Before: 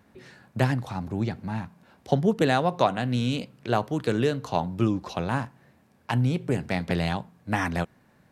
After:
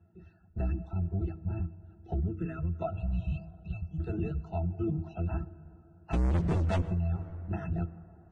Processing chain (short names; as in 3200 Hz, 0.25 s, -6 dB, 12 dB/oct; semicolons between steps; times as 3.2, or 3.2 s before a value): octaver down 1 oct, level +4 dB; in parallel at -10 dB: hard clip -23 dBFS, distortion -7 dB; on the sum: octave resonator E, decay 0.1 s; 2.92–4 spectral gain 210–2400 Hz -23 dB; 6.13–6.82 sample leveller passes 5; reverb removal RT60 0.74 s; de-hum 160.6 Hz, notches 3; on a send at -17.5 dB: reverb RT60 3.3 s, pre-delay 18 ms; on the sum: limiter -22 dBFS, peak gain reduction 9 dB; 2.28–2.82 fixed phaser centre 1800 Hz, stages 4; gain -1.5 dB; Vorbis 16 kbps 22050 Hz